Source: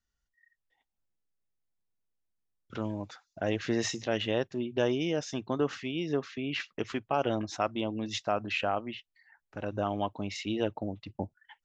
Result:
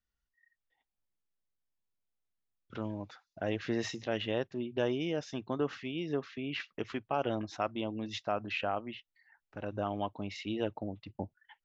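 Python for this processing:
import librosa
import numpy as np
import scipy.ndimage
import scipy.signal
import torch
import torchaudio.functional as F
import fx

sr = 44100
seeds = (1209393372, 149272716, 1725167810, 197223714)

y = scipy.signal.sosfilt(scipy.signal.butter(2, 4800.0, 'lowpass', fs=sr, output='sos'), x)
y = F.gain(torch.from_numpy(y), -3.5).numpy()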